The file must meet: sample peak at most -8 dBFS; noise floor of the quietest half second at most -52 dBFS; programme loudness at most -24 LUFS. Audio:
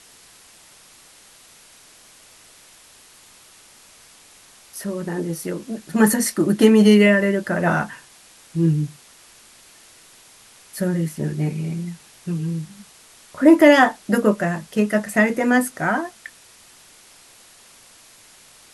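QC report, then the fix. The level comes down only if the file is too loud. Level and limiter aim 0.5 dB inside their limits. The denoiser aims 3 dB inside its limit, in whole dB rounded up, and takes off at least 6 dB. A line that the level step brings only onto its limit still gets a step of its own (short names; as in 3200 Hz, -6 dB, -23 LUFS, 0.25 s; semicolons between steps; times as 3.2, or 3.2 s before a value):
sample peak -1.5 dBFS: fail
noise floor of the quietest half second -49 dBFS: fail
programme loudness -19.0 LUFS: fail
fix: gain -5.5 dB; limiter -8.5 dBFS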